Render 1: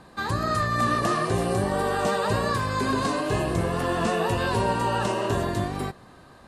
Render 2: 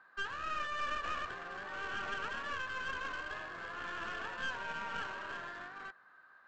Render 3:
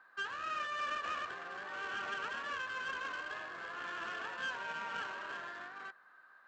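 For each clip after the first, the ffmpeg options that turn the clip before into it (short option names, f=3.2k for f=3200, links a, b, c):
-af "bandpass=f=1.5k:t=q:w=5.7:csg=0,aresample=16000,aeval=exprs='clip(val(0),-1,0.00596)':c=same,aresample=44100"
-af "highpass=f=270:p=1"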